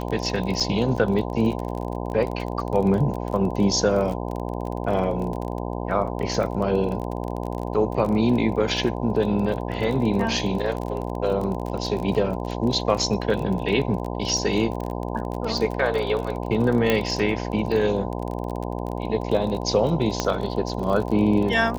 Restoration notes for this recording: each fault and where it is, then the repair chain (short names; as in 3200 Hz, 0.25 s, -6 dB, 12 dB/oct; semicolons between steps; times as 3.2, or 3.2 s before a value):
buzz 60 Hz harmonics 17 -29 dBFS
crackle 29/s -28 dBFS
0.6–0.61 gap 5.7 ms
16.9 pop -7 dBFS
20.2 pop -8 dBFS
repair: de-click; de-hum 60 Hz, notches 17; interpolate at 0.6, 5.7 ms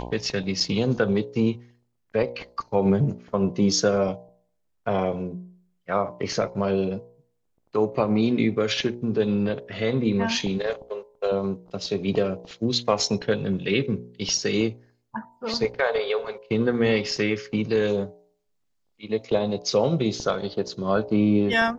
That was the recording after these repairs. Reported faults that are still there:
none